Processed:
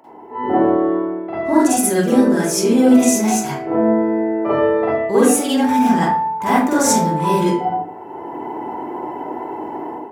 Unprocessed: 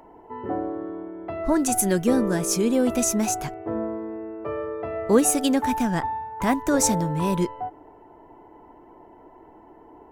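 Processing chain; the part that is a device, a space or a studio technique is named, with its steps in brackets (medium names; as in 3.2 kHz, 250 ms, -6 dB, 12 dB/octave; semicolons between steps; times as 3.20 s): far laptop microphone (reverberation RT60 0.55 s, pre-delay 41 ms, DRR -9.5 dB; high-pass 170 Hz 12 dB/octave; level rider gain up to 13 dB); trim -1 dB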